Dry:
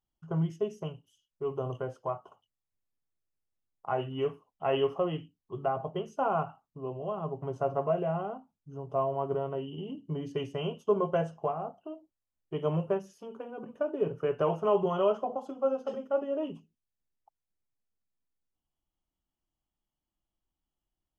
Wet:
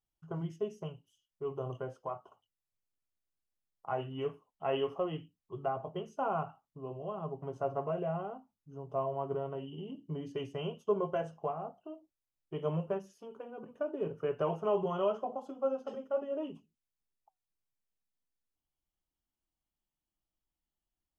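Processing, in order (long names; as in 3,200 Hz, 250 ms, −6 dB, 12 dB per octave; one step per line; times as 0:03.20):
flanger 0.37 Hz, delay 1.5 ms, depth 5.4 ms, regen −78%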